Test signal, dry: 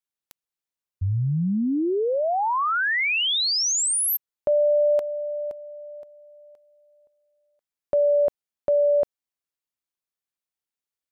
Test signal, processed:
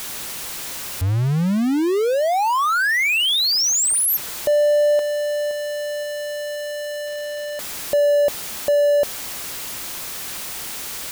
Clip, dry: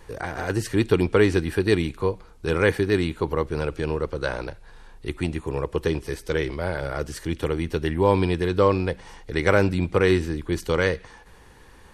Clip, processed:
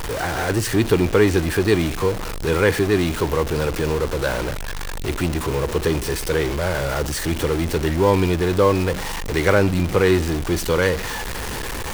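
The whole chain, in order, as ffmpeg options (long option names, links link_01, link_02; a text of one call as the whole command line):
ffmpeg -i in.wav -af "aeval=exprs='val(0)+0.5*0.0708*sgn(val(0))':channel_layout=same,volume=1dB" out.wav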